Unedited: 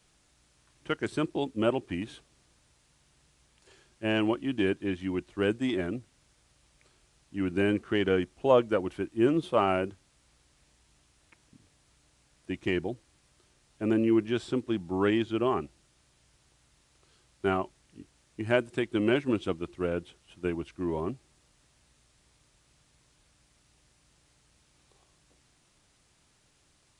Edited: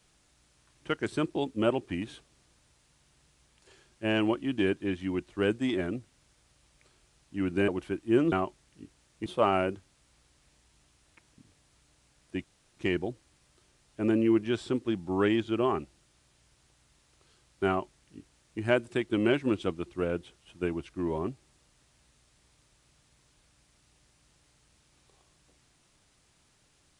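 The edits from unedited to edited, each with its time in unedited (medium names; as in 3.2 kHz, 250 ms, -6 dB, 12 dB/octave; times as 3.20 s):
7.68–8.77 s: delete
12.59 s: insert room tone 0.33 s
17.49–18.43 s: copy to 9.41 s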